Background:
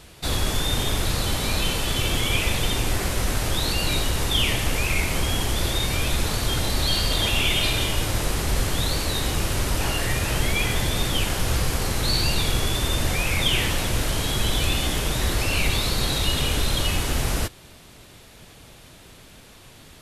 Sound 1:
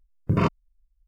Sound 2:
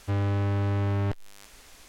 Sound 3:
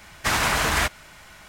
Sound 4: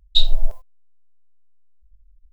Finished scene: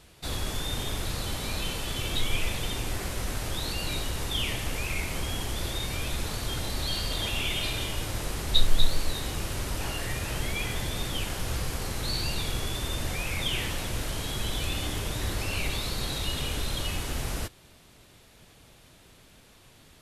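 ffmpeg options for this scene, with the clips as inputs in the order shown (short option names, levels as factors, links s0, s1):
-filter_complex "[4:a]asplit=2[s0][s1];[0:a]volume=0.398[s2];[s1]aecho=1:1:243:0.473[s3];[s0]atrim=end=2.32,asetpts=PTS-STARTPTS,volume=0.158,afade=t=in:d=0.004:c=hsin,afade=t=out:st=2.316:d=0.004:c=hsin,adelay=2000[s4];[s3]atrim=end=2.32,asetpts=PTS-STARTPTS,volume=0.473,afade=t=in:d=0.004:c=hsin,afade=t=out:st=2.316:d=0.004:c=hsin,adelay=8390[s5];[2:a]atrim=end=1.88,asetpts=PTS-STARTPTS,volume=0.2,afade=t=in:d=0.004:c=hsin,afade=t=out:st=1.876:d=0.004:c=hsin,adelay=14630[s6];[s2][s4][s5][s6]amix=inputs=4:normalize=0"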